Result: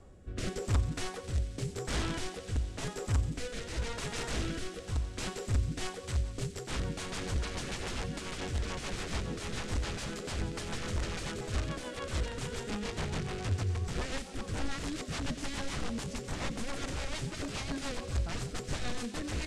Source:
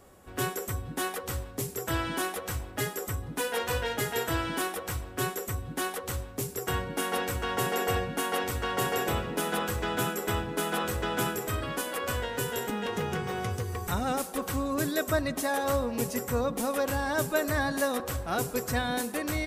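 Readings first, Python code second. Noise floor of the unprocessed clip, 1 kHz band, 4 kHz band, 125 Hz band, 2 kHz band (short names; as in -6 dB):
-43 dBFS, -11.5 dB, -3.5 dB, 0.0 dB, -8.5 dB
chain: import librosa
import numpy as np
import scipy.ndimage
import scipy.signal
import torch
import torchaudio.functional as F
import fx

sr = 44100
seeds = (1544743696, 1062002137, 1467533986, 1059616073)

y = (np.mod(10.0 ** (25.5 / 20.0) * x + 1.0, 2.0) - 1.0) / 10.0 ** (25.5 / 20.0)
y = fx.low_shelf(y, sr, hz=310.0, db=7.0)
y = fx.rotary_switch(y, sr, hz=0.9, then_hz=7.0, switch_at_s=5.46)
y = fx.echo_wet_highpass(y, sr, ms=89, feedback_pct=84, hz=2300.0, wet_db=-13)
y = fx.rider(y, sr, range_db=4, speed_s=2.0)
y = scipy.signal.sosfilt(scipy.signal.butter(4, 8600.0, 'lowpass', fs=sr, output='sos'), y)
y = fx.low_shelf(y, sr, hz=81.0, db=10.0)
y = fx.doppler_dist(y, sr, depth_ms=0.22)
y = y * 10.0 ** (-5.5 / 20.0)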